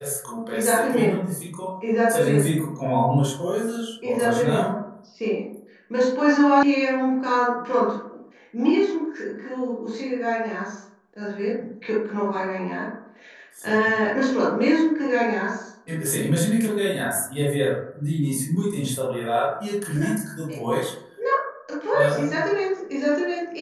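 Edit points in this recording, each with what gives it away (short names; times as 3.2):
6.63 sound cut off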